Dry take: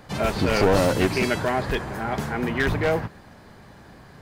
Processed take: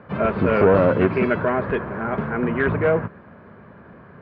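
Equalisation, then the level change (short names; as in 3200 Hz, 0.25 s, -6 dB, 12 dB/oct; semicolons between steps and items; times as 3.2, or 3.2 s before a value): speaker cabinet 110–2000 Hz, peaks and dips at 130 Hz -5 dB, 300 Hz -6 dB, 800 Hz -10 dB, 1900 Hz -7 dB; +6.0 dB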